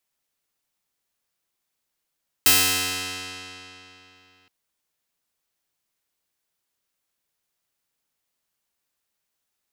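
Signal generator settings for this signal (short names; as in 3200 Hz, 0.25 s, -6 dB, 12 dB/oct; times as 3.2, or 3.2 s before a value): plucked string F#2, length 2.02 s, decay 3.19 s, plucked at 0.16, bright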